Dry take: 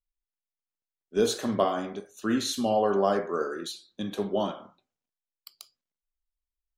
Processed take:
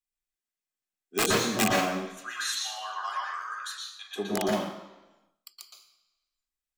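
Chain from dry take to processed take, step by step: 1.93–4.16 Chebyshev high-pass 960 Hz, order 4; wrapped overs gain 17 dB; reverb RT60 1.1 s, pre-delay 0.114 s, DRR -2 dB

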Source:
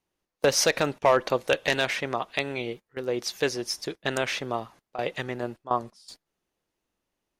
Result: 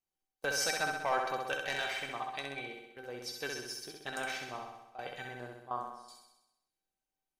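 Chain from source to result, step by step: high shelf 5500 Hz +6 dB; resonator 780 Hz, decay 0.26 s, mix 90%; dynamic EQ 1300 Hz, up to +7 dB, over -55 dBFS, Q 1.2; flutter echo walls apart 11.1 m, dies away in 0.92 s; gain +1.5 dB

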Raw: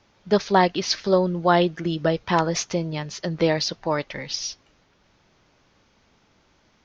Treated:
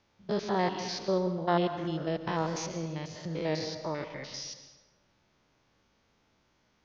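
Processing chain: stepped spectrum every 0.1 s; plate-style reverb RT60 1.3 s, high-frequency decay 0.6×, pre-delay 0.105 s, DRR 9 dB; gain -8 dB

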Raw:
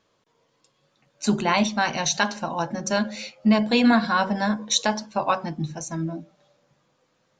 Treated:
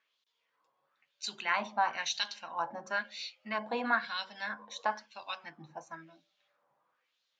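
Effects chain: LFO band-pass sine 1 Hz 870–3900 Hz; gain -1.5 dB

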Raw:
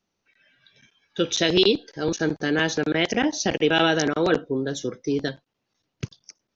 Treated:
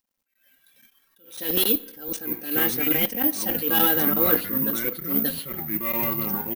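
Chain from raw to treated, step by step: CVSD 64 kbps; comb 3.8 ms, depth 71%; spring tank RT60 1.2 s, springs 32 ms, DRR 19.5 dB; echoes that change speed 0.567 s, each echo -6 st, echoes 2, each echo -6 dB; careless resampling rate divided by 3×, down none, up zero stuff; attack slew limiter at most 110 dB/s; gain -6 dB

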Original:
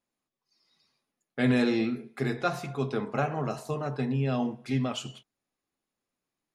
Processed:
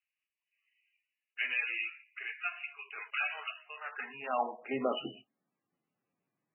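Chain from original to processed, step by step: high-pass sweep 2600 Hz -> 140 Hz, 3.6–5.63; 2.98–3.5 sample leveller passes 2; MP3 8 kbps 16000 Hz

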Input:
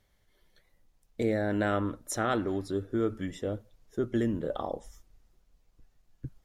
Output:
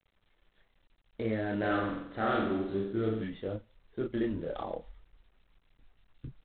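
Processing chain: chorus voices 4, 0.56 Hz, delay 29 ms, depth 3.2 ms; 1.58–3.24 flutter echo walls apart 7.8 m, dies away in 0.75 s; G.726 24 kbps 8000 Hz

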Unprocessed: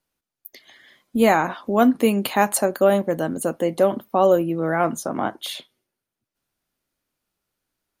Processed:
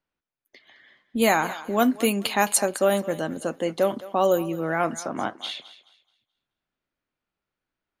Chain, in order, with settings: low-pass opened by the level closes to 2000 Hz, open at -13.5 dBFS; high shelf 2300 Hz +11 dB; on a send: thinning echo 0.214 s, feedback 28%, high-pass 490 Hz, level -15.5 dB; on the sum: gain -5 dB

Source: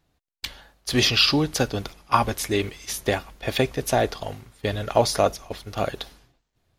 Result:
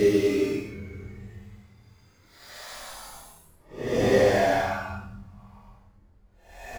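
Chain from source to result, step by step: median filter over 15 samples; reverb removal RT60 0.98 s; notches 50/100/150/200 Hz; Paulstretch 7.6×, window 0.10 s, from 2.55; doubler 25 ms -5 dB

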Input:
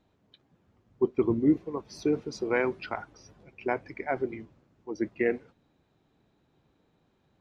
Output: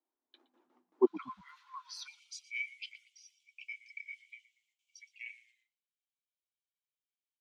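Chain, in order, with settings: octaver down 2 oct, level -1 dB; gate with hold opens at -54 dBFS; rippled Chebyshev high-pass 240 Hz, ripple 9 dB, from 1.05 s 1000 Hz, from 2.06 s 2200 Hz; frequency-shifting echo 0.118 s, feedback 34%, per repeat -61 Hz, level -18 dB; gain +4 dB

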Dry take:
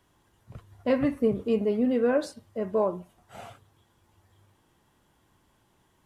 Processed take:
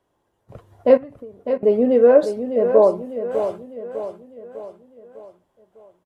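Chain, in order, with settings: gate -56 dBFS, range -10 dB; bell 540 Hz +13 dB 1.7 oct; 0.97–1.63 compressor 10:1, threshold -36 dBFS, peak gain reduction 26.5 dB; feedback echo 0.602 s, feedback 48%, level -9 dB

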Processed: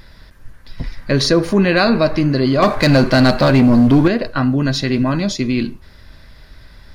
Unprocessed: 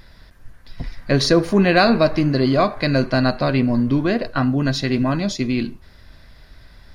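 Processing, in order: notch 710 Hz, Q 13; in parallel at -2.5 dB: limiter -13.5 dBFS, peak gain reduction 11 dB; 2.62–4.08 on the sum: sample leveller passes 2; gain -1 dB

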